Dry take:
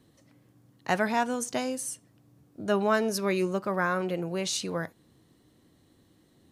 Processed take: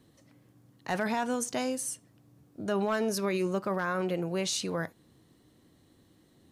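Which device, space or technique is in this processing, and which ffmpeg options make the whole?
clipper into limiter: -af "asoftclip=type=hard:threshold=0.15,alimiter=limit=0.0841:level=0:latency=1:release=15"

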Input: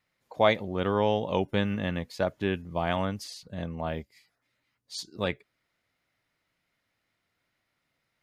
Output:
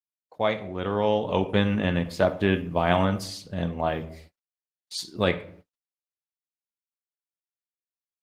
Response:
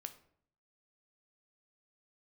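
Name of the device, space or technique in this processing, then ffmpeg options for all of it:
speakerphone in a meeting room: -filter_complex "[1:a]atrim=start_sample=2205[s0];[0:a][s0]afir=irnorm=-1:irlink=0,dynaudnorm=f=220:g=11:m=3.16,agate=range=0.00794:threshold=0.00316:ratio=16:detection=peak,volume=1.12" -ar 48000 -c:a libopus -b:a 20k

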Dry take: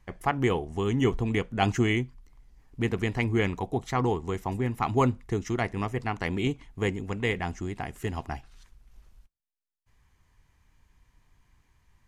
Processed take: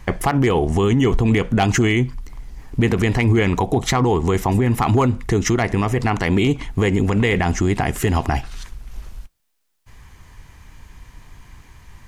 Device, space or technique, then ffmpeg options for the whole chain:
loud club master: -af "acompressor=threshold=0.0355:ratio=2,asoftclip=type=hard:threshold=0.0944,alimiter=level_in=26.6:limit=0.891:release=50:level=0:latency=1,volume=0.398"

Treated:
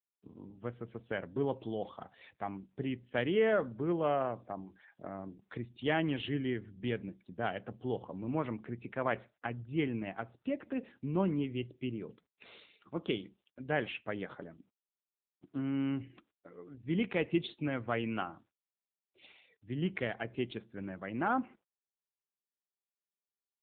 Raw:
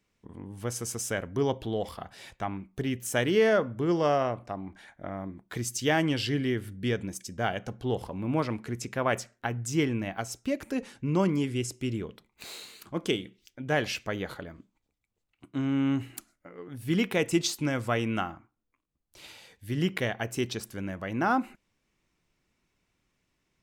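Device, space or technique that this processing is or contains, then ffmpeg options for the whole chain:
mobile call with aggressive noise cancelling: -af "highpass=120,afftdn=nr=35:nf=-51,volume=0.562" -ar 8000 -c:a libopencore_amrnb -b:a 7950

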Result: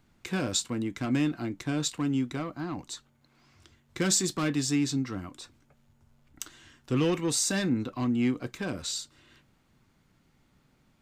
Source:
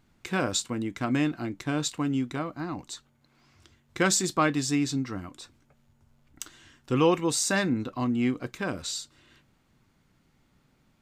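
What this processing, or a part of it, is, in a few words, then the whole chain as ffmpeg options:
one-band saturation: -filter_complex "[0:a]acrossover=split=370|2600[s0][s1][s2];[s1]asoftclip=type=tanh:threshold=0.0224[s3];[s0][s3][s2]amix=inputs=3:normalize=0"

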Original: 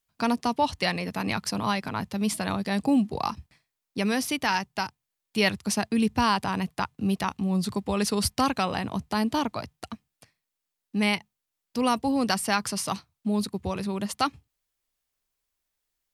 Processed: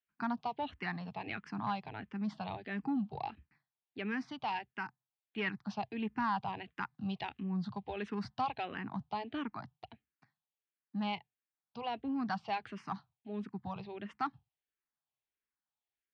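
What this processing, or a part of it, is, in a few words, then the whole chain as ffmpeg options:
barber-pole phaser into a guitar amplifier: -filter_complex "[0:a]asettb=1/sr,asplit=3[s0][s1][s2];[s0]atrim=end=6.644[s3];[s1]atrim=start=6.64:end=7.43,asetpts=PTS-STARTPTS,afade=t=in:d=0.004:c=qsin,afade=t=out:st=0.786:d=0.004:c=qsin,highshelf=f=3300:g=10[s4];[s2]atrim=start=7.426[s5];[s3][s4]acrossfade=d=0.004:c1=hsin:c2=qsin[s6];[s6][s5]acrossfade=d=0.004:c1=qsin:c2=hsin,asplit=2[s7][s8];[s8]afreqshift=-1.5[s9];[s7][s9]amix=inputs=2:normalize=1,asoftclip=type=tanh:threshold=0.126,highpass=75,equalizer=f=83:t=q:w=4:g=-5,equalizer=f=130:t=q:w=4:g=4,equalizer=f=530:t=q:w=4:g=-8,equalizer=f=800:t=q:w=4:g=6,equalizer=f=1600:t=q:w=4:g=4,lowpass=f=3500:w=0.5412,lowpass=f=3500:w=1.3066,volume=0.376"

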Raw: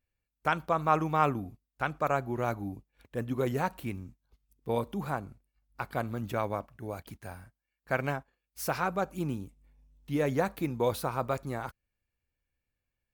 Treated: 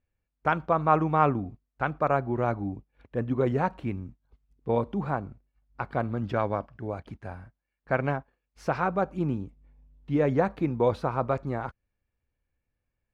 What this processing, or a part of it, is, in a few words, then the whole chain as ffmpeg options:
through cloth: -filter_complex "[0:a]lowpass=6500,highshelf=f=3300:g=-17.5,asettb=1/sr,asplit=3[s0][s1][s2];[s0]atrim=end=6.214[s3];[s1]atrim=start=6.21:end=6.82,asetpts=PTS-STARTPTS,afade=t=in:d=0.004:c=qsin,afade=t=out:st=0.606:d=0.004:c=qsin,equalizer=f=1600:t=o:w=0.33:g=4,equalizer=f=3150:t=o:w=0.33:g=5,equalizer=f=5000:t=o:w=0.33:g=9[s4];[s2]atrim=start=6.816[s5];[s3][s4]acrossfade=d=0.004:c1=hsin:c2=qsin[s6];[s6][s5]acrossfade=d=0.004:c1=qsin:c2=hsin,volume=1.78"

